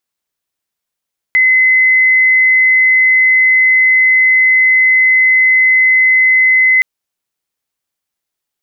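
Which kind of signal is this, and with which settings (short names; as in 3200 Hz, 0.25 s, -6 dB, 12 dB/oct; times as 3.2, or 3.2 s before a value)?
tone sine 2040 Hz -6 dBFS 5.47 s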